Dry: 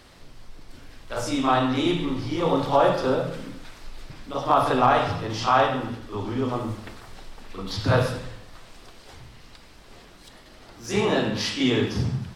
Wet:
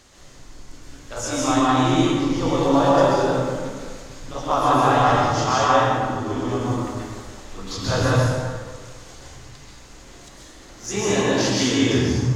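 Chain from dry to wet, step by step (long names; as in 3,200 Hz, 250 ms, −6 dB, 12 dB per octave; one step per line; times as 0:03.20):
parametric band 6,700 Hz +14.5 dB 0.42 octaves
dense smooth reverb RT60 1.6 s, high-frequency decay 0.55×, pre-delay 115 ms, DRR −5 dB
level −3 dB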